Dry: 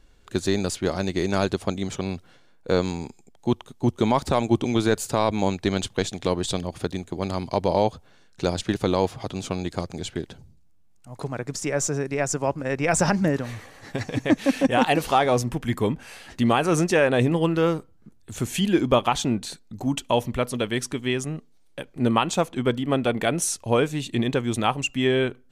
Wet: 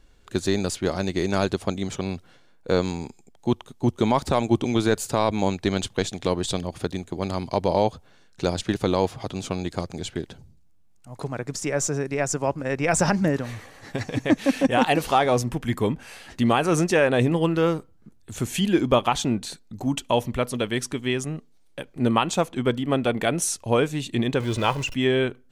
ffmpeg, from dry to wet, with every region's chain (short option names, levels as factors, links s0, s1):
-filter_complex "[0:a]asettb=1/sr,asplit=3[s0][s1][s2];[s0]atrim=end=24.404[s3];[s1]atrim=start=24.4:end=24.94,asetpts=PTS-STARTPTS,afade=t=in:d=0.004:c=qsin,afade=t=out:st=0.536:d=0.004:c=qsin,aeval=exprs='val(0)+0.5*0.0266*sgn(val(0))':c=same,acrossover=split=6500[s4][s5];[s5]acompressor=threshold=0.00355:ratio=4:attack=1:release=60[s6];[s4][s6]amix=inputs=2:normalize=0,aecho=1:1:2:0.47,atrim=end_sample=23814[s7];[s2]atrim=start=24.936[s8];[s3][s7]acrossfade=d=0.004:c1=hsin:c2=qsin[s9];[s9][s8]acrossfade=d=0.004:c1=qsin:c2=hsin"